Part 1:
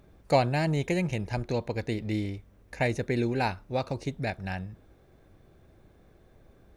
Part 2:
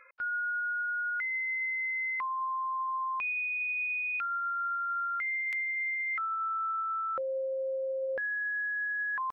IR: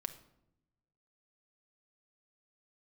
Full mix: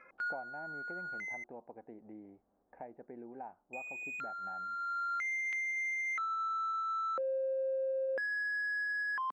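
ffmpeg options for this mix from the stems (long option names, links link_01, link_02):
-filter_complex "[0:a]lowpass=frequency=1500:width=0.5412,lowpass=frequency=1500:width=1.3066,equalizer=frequency=770:width=2.3:gain=13,acompressor=threshold=-36dB:ratio=2,volume=-16dB,asplit=2[link_01][link_02];[1:a]alimiter=level_in=7.5dB:limit=-24dB:level=0:latency=1:release=324,volume=-7.5dB,adynamicsmooth=sensitivity=7.5:basefreq=2600,volume=0dB,asplit=3[link_03][link_04][link_05];[link_03]atrim=end=1.44,asetpts=PTS-STARTPTS,afade=type=out:start_time=1.436:duration=0.004:curve=hsin[link_06];[link_04]atrim=start=1.44:end=3.73,asetpts=PTS-STARTPTS,volume=0[link_07];[link_05]atrim=start=3.73,asetpts=PTS-STARTPTS,afade=type=in:duration=0.004:curve=hsin[link_08];[link_06][link_07][link_08]concat=n=3:v=0:a=1[link_09];[link_02]apad=whole_len=411407[link_10];[link_09][link_10]sidechaincompress=threshold=-52dB:ratio=8:attack=29:release=886[link_11];[link_01][link_11]amix=inputs=2:normalize=0,lowshelf=frequency=160:width_type=q:width=1.5:gain=-13.5"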